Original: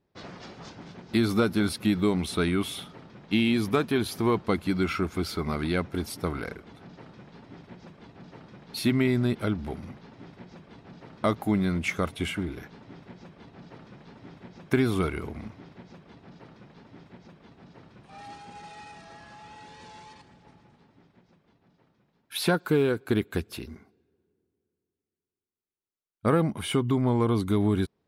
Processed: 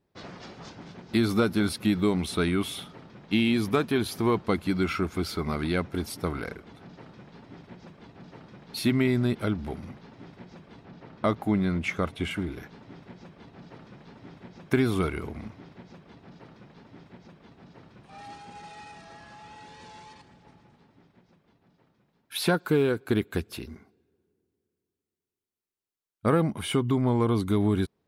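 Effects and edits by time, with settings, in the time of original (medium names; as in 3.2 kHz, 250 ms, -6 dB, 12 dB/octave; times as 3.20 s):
10.85–12.31 s: treble shelf 6.4 kHz -10.5 dB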